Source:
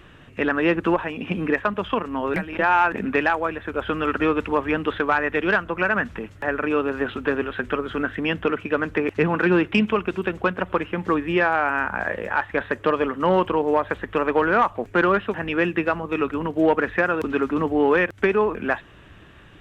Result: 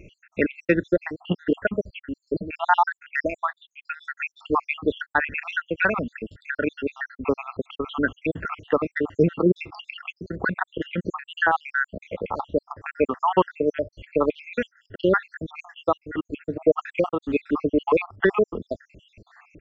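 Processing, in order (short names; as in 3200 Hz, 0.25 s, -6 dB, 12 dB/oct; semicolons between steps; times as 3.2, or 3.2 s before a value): random spectral dropouts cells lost 78%; downsampling 16000 Hz; gain +3 dB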